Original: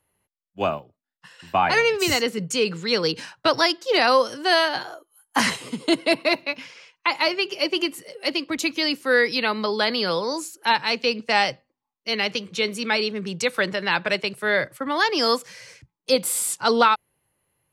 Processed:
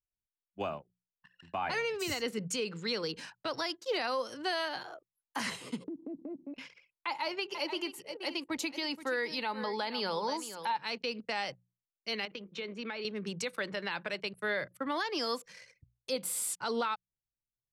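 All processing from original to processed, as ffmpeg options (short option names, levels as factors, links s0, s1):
-filter_complex "[0:a]asettb=1/sr,asplit=3[s0][s1][s2];[s0]atrim=end=5.844[s3];[s1]atrim=start=5.84:end=6.54,asetpts=PTS-STARTPTS,afade=t=in:d=0.004:c=qsin,afade=t=out:st=0.696:d=0.004:c=qsin,lowpass=f=280:t=q:w=2.5,lowshelf=f=110:t=q:w=1.5:g=-7.5,acompressor=threshold=0.0316:ratio=12:attack=3.2:release=140:knee=1:detection=peak[s4];[s2]atrim=start=6.536[s5];[s3][s4]acrossfade=d=0.004:c1=hsin:c2=qsin[s6];[s6][s5]acrossfade=d=0.004:c1=qsin:c2=hsin,asettb=1/sr,asplit=3[s7][s8][s9];[s7]atrim=end=7.074[s10];[s8]atrim=start=7.07:end=10.77,asetpts=PTS-STARTPTS,afade=t=in:d=0.004:c=qsin,afade=t=out:st=3.696:d=0.004:c=qsin,equalizer=f=880:w=6.7:g=12.5,aecho=1:1:476:0.188,atrim=end_sample=163170[s11];[s9]atrim=start=10.766[s12];[s10][s11]acrossfade=d=0.004:c1=hsin:c2=qsin[s13];[s13][s12]acrossfade=d=0.004:c1=qsin:c2=hsin,asettb=1/sr,asplit=3[s14][s15][s16];[s14]atrim=end=12.254[s17];[s15]atrim=start=12.25:end=13.05,asetpts=PTS-STARTPTS,afade=t=in:d=0.004:c=qsin,afade=t=out:st=0.796:d=0.004:c=qsin,highpass=190,lowpass=3300,acompressor=threshold=0.0447:ratio=10:attack=3.2:release=140:knee=1:detection=peak[s18];[s16]atrim=start=13.046[s19];[s17][s18]acrossfade=d=0.004:c1=hsin:c2=qsin[s20];[s20][s19]acrossfade=d=0.004:c1=qsin:c2=hsin,anlmdn=0.158,bandreject=f=60:t=h:w=6,bandreject=f=120:t=h:w=6,bandreject=f=180:t=h:w=6,alimiter=limit=0.141:level=0:latency=1:release=201,volume=0.422"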